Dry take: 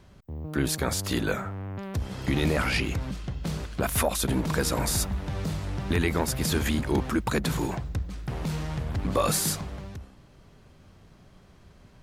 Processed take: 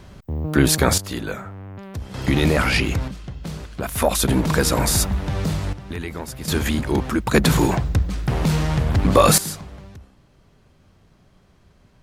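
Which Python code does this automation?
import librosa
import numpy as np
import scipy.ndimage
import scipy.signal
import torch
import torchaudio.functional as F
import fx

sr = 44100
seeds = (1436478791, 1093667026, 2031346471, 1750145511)

y = fx.gain(x, sr, db=fx.steps((0.0, 10.5), (0.98, -1.0), (2.14, 7.0), (3.08, 0.0), (4.02, 7.5), (5.73, -5.0), (6.48, 4.5), (7.34, 11.0), (9.38, -1.5)))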